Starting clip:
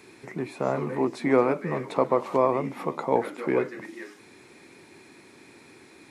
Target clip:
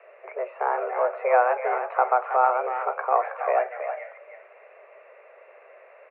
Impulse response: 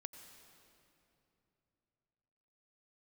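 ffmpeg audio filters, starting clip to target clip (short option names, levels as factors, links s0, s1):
-filter_complex "[0:a]asplit=2[s0][s1];[s1]adelay=320,highpass=300,lowpass=3400,asoftclip=type=hard:threshold=0.133,volume=0.447[s2];[s0][s2]amix=inputs=2:normalize=0,highpass=f=150:t=q:w=0.5412,highpass=f=150:t=q:w=1.307,lowpass=f=2000:t=q:w=0.5176,lowpass=f=2000:t=q:w=0.7071,lowpass=f=2000:t=q:w=1.932,afreqshift=250,volume=1.19"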